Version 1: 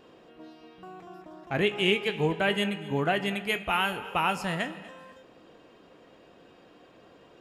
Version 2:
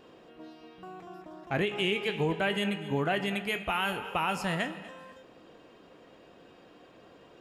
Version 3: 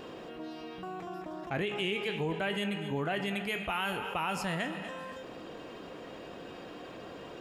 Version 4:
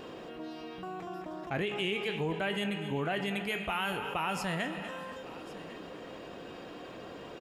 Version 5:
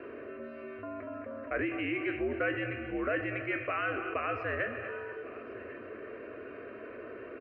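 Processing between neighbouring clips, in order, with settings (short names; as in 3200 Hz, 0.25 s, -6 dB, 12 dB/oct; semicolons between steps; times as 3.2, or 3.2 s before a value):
limiter -19 dBFS, peak gain reduction 7.5 dB
fast leveller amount 50%; gain -5 dB
echo 1.1 s -18 dB
fixed phaser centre 950 Hz, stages 6; mistuned SSB -81 Hz 190–3200 Hz; gain +4 dB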